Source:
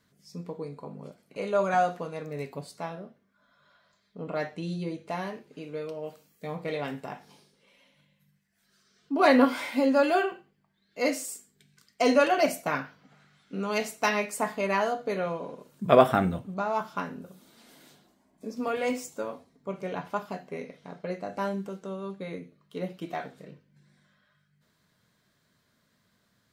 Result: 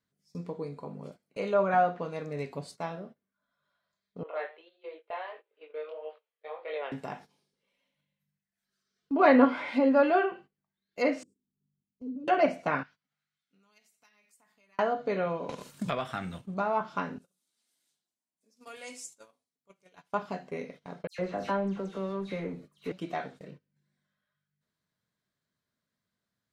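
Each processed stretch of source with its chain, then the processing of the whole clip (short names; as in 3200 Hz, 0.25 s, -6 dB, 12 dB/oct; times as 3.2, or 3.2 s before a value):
4.23–6.92 elliptic band-pass 460–3400 Hz + chorus 1.6 Hz, delay 19.5 ms, depth 6.7 ms
11.23–12.28 inverse Chebyshev low-pass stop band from 640 Hz + compressor 2:1, threshold -43 dBFS
12.83–14.79 passive tone stack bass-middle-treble 5-5-5 + compressor 12:1, threshold -47 dBFS
15.49–16.47 passive tone stack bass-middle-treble 5-5-5 + sample leveller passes 1 + three-band squash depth 100%
17.18–20.13 LPF 11000 Hz 24 dB/oct + pre-emphasis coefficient 0.9
21.07–22.92 G.711 law mismatch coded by mu + dispersion lows, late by 0.117 s, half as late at 3000 Hz
whole clip: gate -48 dBFS, range -16 dB; treble ducked by the level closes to 2300 Hz, closed at -23.5 dBFS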